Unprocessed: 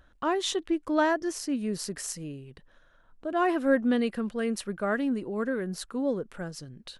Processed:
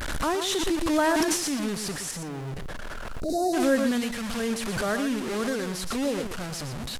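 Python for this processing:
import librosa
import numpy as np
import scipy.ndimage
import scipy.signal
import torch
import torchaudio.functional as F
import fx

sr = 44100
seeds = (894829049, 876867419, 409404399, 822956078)

y = fx.delta_mod(x, sr, bps=64000, step_db=-28.5)
y = fx.high_shelf(y, sr, hz=2300.0, db=-9.5, at=(2.11, 3.3))
y = fx.dmg_crackle(y, sr, seeds[0], per_s=600.0, level_db=-50.0)
y = fx.transient(y, sr, attack_db=-3, sustain_db=12, at=(0.99, 1.53))
y = fx.spec_box(y, sr, start_s=3.2, length_s=0.33, low_hz=760.0, high_hz=3700.0, gain_db=-27)
y = fx.peak_eq(y, sr, hz=410.0, db=-9.0, octaves=1.1, at=(3.91, 4.4))
y = y + 10.0 ** (-8.5 / 20.0) * np.pad(y, (int(119 * sr / 1000.0), 0))[:len(y)]
y = fx.pre_swell(y, sr, db_per_s=31.0)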